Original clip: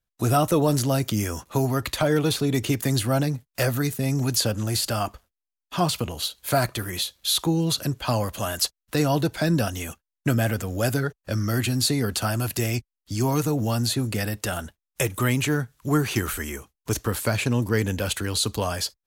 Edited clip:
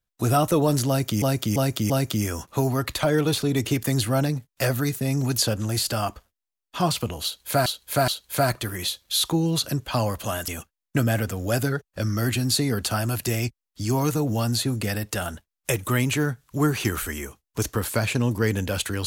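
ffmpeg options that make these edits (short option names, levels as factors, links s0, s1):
-filter_complex "[0:a]asplit=7[s0][s1][s2][s3][s4][s5][s6];[s0]atrim=end=1.222[s7];[s1]atrim=start=0.878:end=1.222[s8];[s2]atrim=start=0.878:end=1.222[s9];[s3]atrim=start=0.878:end=6.642[s10];[s4]atrim=start=6.218:end=6.642[s11];[s5]atrim=start=6.218:end=8.622[s12];[s6]atrim=start=9.788[s13];[s7][s8]acrossfade=d=0.004:c1=hsin:c2=hsin[s14];[s14][s9]acrossfade=d=0.004:c1=hsin:c2=hsin[s15];[s15][s10]acrossfade=d=0.004:c1=hsin:c2=hsin[s16];[s16][s11]acrossfade=d=0.004:c1=hsin:c2=hsin[s17];[s17][s12]acrossfade=d=0.004:c1=hsin:c2=hsin[s18];[s18][s13]acrossfade=d=0.004:c1=hsin:c2=hsin"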